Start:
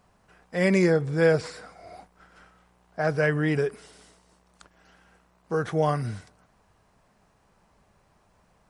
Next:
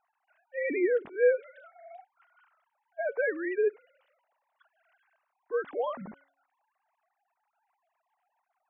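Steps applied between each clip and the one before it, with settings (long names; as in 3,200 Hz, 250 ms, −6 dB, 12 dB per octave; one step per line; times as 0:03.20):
three sine waves on the formant tracks
hum removal 277 Hz, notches 2
level −5.5 dB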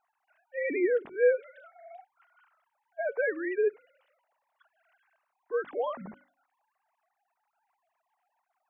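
mains-hum notches 50/100/150/200/250/300 Hz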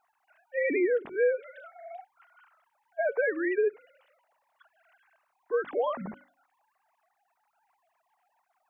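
downward compressor 3 to 1, threshold −29 dBFS, peak gain reduction 8.5 dB
level +5 dB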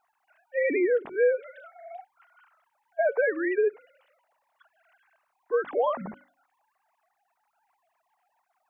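dynamic equaliser 800 Hz, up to +5 dB, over −41 dBFS, Q 0.91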